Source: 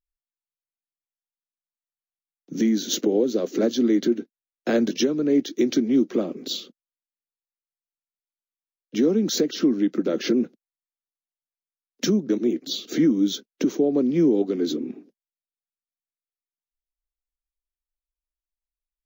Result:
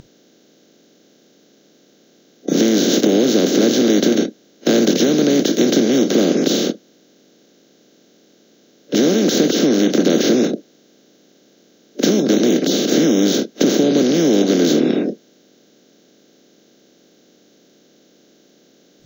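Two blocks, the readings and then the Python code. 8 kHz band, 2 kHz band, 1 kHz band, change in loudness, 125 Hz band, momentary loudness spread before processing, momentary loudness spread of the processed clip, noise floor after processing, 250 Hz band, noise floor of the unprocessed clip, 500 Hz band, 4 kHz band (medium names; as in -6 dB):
+11.5 dB, +11.5 dB, +11.5 dB, +7.5 dB, +8.5 dB, 10 LU, 7 LU, -54 dBFS, +7.0 dB, under -85 dBFS, +8.0 dB, +10.0 dB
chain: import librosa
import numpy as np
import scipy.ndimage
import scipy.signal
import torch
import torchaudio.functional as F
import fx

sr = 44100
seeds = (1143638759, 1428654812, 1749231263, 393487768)

y = fx.bin_compress(x, sr, power=0.2)
y = fx.noise_reduce_blind(y, sr, reduce_db=23)
y = y * 10.0 ** (-1.0 / 20.0)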